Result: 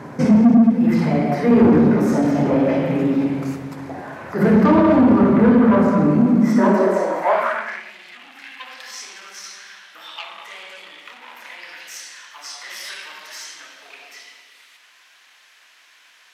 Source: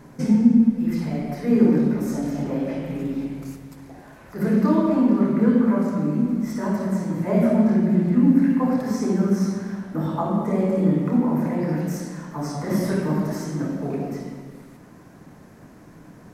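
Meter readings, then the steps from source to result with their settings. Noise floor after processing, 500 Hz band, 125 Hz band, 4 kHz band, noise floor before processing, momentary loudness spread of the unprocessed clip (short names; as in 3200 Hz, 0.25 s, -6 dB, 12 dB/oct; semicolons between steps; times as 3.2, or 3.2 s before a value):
-52 dBFS, +6.0 dB, +0.5 dB, n/a, -47 dBFS, 12 LU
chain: overdrive pedal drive 23 dB, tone 1400 Hz, clips at -5 dBFS; high-pass sweep 95 Hz -> 3100 Hz, 6.21–7.96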